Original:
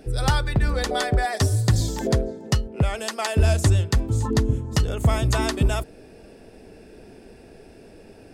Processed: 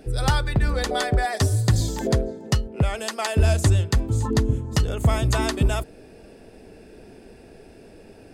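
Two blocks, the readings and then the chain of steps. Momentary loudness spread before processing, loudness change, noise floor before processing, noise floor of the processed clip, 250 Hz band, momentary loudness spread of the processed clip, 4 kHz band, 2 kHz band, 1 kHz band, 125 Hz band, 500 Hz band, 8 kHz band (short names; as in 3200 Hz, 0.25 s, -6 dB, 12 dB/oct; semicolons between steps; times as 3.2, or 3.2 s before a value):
6 LU, 0.0 dB, -47 dBFS, -47 dBFS, 0.0 dB, 6 LU, 0.0 dB, 0.0 dB, 0.0 dB, 0.0 dB, 0.0 dB, 0.0 dB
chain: notch 5500 Hz, Q 24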